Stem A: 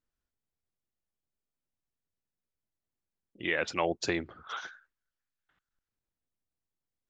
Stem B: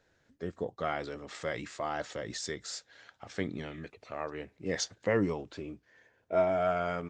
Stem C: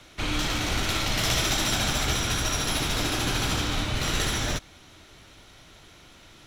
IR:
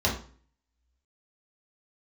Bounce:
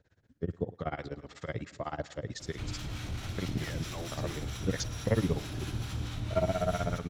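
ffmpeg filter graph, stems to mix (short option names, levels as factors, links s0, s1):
-filter_complex "[0:a]adelay=150,volume=0.75[s0];[1:a]lowpass=7700,tremolo=f=16:d=0.97,volume=1.19,asplit=2[s1][s2];[s2]volume=0.1[s3];[2:a]alimiter=limit=0.0944:level=0:latency=1:release=141,adelay=2400,volume=0.75,asplit=2[s4][s5];[s5]volume=0.075[s6];[s0][s4]amix=inputs=2:normalize=0,asoftclip=type=hard:threshold=0.0422,alimiter=level_in=3.98:limit=0.0631:level=0:latency=1,volume=0.251,volume=1[s7];[s3][s6]amix=inputs=2:normalize=0,aecho=0:1:105|210|315|420|525|630|735|840:1|0.53|0.281|0.149|0.0789|0.0418|0.0222|0.0117[s8];[s1][s7][s8]amix=inputs=3:normalize=0,acrossover=split=770[s9][s10];[s9]aeval=exprs='val(0)*(1-0.5/2+0.5/2*cos(2*PI*4.5*n/s))':c=same[s11];[s10]aeval=exprs='val(0)*(1-0.5/2-0.5/2*cos(2*PI*4.5*n/s))':c=same[s12];[s11][s12]amix=inputs=2:normalize=0,equalizer=f=94:t=o:w=2.4:g=13.5"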